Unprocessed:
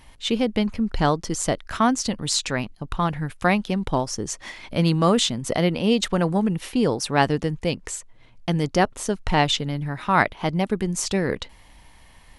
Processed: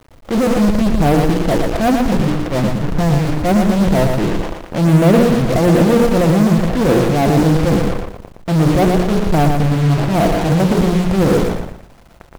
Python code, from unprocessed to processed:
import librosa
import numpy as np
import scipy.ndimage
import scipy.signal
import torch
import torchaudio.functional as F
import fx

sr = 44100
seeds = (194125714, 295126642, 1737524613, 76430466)

p1 = scipy.signal.sosfilt(scipy.signal.cheby1(4, 1.0, 700.0, 'lowpass', fs=sr, output='sos'), x)
p2 = fx.hum_notches(p1, sr, base_hz=60, count=8)
p3 = p2 + 0.35 * np.pad(p2, (int(5.9 * sr / 1000.0), 0))[:len(p2)]
p4 = fx.transient(p3, sr, attack_db=-12, sustain_db=11)
p5 = fx.fuzz(p4, sr, gain_db=47.0, gate_db=-38.0)
p6 = p4 + (p5 * 10.0 ** (-5.0 / 20.0))
p7 = fx.quant_dither(p6, sr, seeds[0], bits=8, dither='none')
p8 = p7 + fx.echo_feedback(p7, sr, ms=116, feedback_pct=31, wet_db=-5.0, dry=0)
y = p8 * 10.0 ** (2.0 / 20.0)